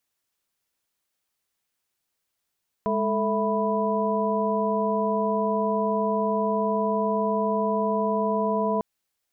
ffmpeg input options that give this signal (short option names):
-f lavfi -i "aevalsrc='0.0447*(sin(2*PI*207.65*t)+sin(2*PI*440*t)+sin(2*PI*659.26*t)+sin(2*PI*987.77*t))':d=5.95:s=44100"